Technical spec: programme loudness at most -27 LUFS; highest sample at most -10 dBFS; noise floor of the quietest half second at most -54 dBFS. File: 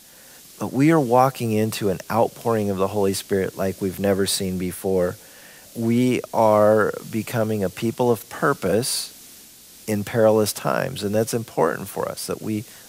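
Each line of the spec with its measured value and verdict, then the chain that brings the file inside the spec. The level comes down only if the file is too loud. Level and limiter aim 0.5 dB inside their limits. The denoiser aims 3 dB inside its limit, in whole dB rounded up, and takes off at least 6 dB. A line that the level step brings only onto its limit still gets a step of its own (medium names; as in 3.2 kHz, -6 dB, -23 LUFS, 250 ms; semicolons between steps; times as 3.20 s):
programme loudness -21.5 LUFS: fail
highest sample -2.5 dBFS: fail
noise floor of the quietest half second -46 dBFS: fail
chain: noise reduction 6 dB, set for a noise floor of -46 dBFS; trim -6 dB; peak limiter -10.5 dBFS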